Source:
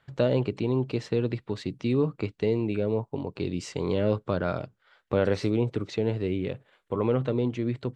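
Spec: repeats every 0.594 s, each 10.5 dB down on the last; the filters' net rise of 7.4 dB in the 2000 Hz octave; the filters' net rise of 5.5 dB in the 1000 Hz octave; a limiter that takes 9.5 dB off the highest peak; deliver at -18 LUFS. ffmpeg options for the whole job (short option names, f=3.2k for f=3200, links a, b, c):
-af "equalizer=f=1k:t=o:g=4.5,equalizer=f=2k:t=o:g=8.5,alimiter=limit=-16dB:level=0:latency=1,aecho=1:1:594|1188|1782:0.299|0.0896|0.0269,volume=11dB"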